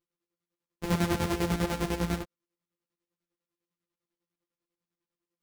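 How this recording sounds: a buzz of ramps at a fixed pitch in blocks of 256 samples; chopped level 10 Hz, depth 65%, duty 45%; a shimmering, thickened sound

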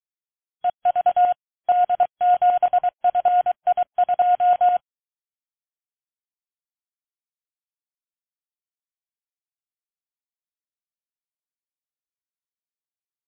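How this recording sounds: a buzz of ramps at a fixed pitch in blocks of 8 samples; tremolo saw up 6.4 Hz, depth 65%; a quantiser's noise floor 6-bit, dither none; MP3

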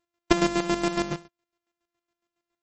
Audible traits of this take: a buzz of ramps at a fixed pitch in blocks of 128 samples; chopped level 7.2 Hz, depth 65%, duty 35%; MP3

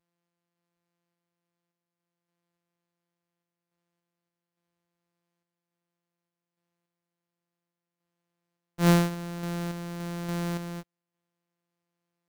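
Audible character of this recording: a buzz of ramps at a fixed pitch in blocks of 256 samples; random-step tremolo; Vorbis

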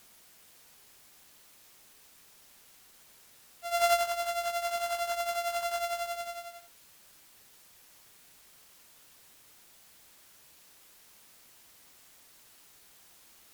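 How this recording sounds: a buzz of ramps at a fixed pitch in blocks of 64 samples; tremolo triangle 11 Hz, depth 75%; a quantiser's noise floor 10-bit, dither triangular; AAC

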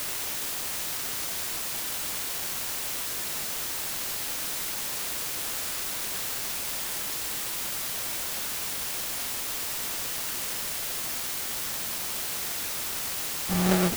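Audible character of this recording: phasing stages 2, 1.1 Hz, lowest notch 510–1900 Hz; aliases and images of a low sample rate 1000 Hz, jitter 20%; random-step tremolo; a quantiser's noise floor 6-bit, dither triangular

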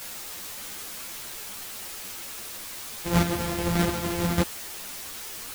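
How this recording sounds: a buzz of ramps at a fixed pitch in blocks of 256 samples; chopped level 1.6 Hz, depth 60%, duty 15%; a quantiser's noise floor 8-bit, dither triangular; a shimmering, thickened sound

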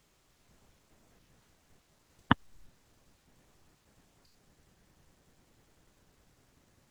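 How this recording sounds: noise floor -70 dBFS; spectral tilt -4.0 dB/oct

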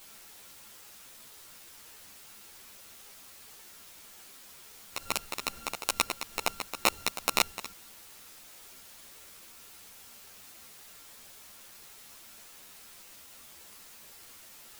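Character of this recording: a buzz of ramps at a fixed pitch in blocks of 32 samples; tremolo triangle 2.2 Hz, depth 90%; a quantiser's noise floor 10-bit, dither triangular; a shimmering, thickened sound

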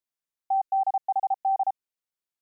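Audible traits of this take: noise floor -92 dBFS; spectral tilt +17.5 dB/oct

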